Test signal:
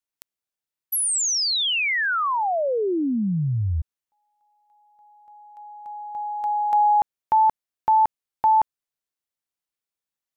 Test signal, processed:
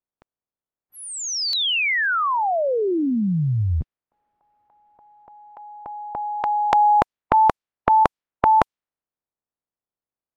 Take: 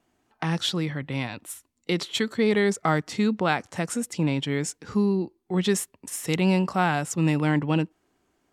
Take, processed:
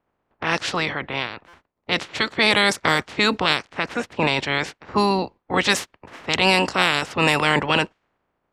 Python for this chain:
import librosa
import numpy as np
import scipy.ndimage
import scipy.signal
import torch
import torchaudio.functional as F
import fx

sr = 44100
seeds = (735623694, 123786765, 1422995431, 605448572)

y = fx.spec_clip(x, sr, under_db=25)
y = fx.env_lowpass(y, sr, base_hz=1000.0, full_db=-17.0)
y = fx.buffer_glitch(y, sr, at_s=(1.48,), block=256, repeats=8)
y = F.gain(torch.from_numpy(y), 4.0).numpy()